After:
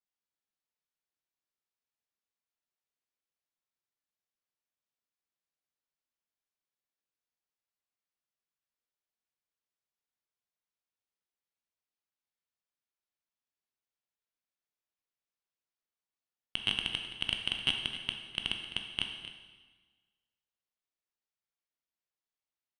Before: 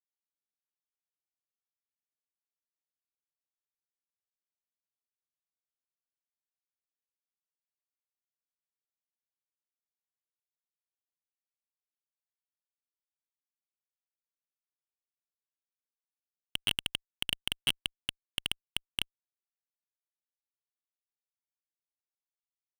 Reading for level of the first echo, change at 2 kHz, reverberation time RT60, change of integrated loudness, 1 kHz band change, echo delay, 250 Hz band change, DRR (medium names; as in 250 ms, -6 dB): -13.5 dB, +1.5 dB, 1.3 s, +0.5 dB, +2.0 dB, 261 ms, +2.0 dB, 3.0 dB